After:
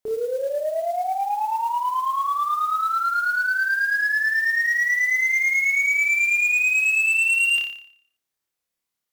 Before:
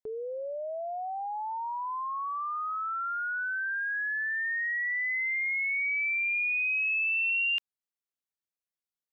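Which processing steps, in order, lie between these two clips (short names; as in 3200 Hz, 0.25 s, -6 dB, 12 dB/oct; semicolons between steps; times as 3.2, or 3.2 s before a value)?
flutter echo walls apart 5 m, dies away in 0.6 s; modulation noise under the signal 25 dB; sine folder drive 4 dB, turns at -16.5 dBFS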